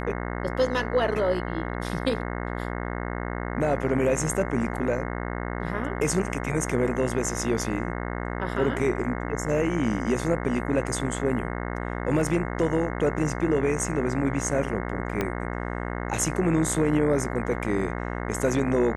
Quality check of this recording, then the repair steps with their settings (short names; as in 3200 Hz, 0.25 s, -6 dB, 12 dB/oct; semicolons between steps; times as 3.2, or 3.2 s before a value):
buzz 60 Hz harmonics 36 -31 dBFS
15.21 pop -12 dBFS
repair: de-click; de-hum 60 Hz, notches 36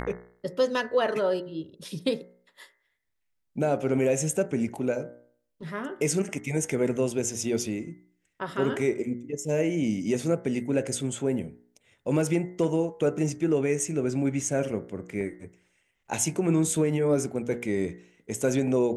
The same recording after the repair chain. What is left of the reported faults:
15.21 pop